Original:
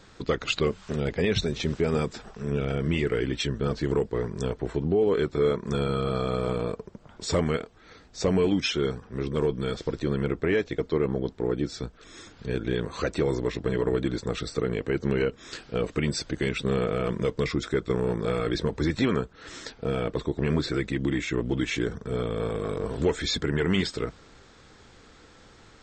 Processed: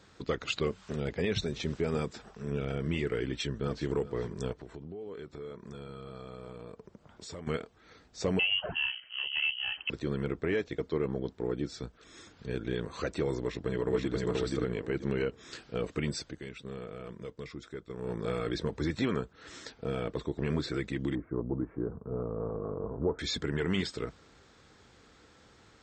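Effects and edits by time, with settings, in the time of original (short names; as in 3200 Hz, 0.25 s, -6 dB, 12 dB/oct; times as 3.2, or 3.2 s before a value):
3.25–3.92 echo throw 0.41 s, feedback 40%, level -16 dB
4.52–7.47 compressor 3:1, threshold -38 dBFS
8.39–9.9 inverted band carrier 3100 Hz
13.41–14.16 echo throw 0.48 s, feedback 20%, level -1 dB
16.06–18.29 dip -10 dB, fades 0.33 s equal-power
21.15–23.19 steep low-pass 1200 Hz
whole clip: HPF 46 Hz; gain -6 dB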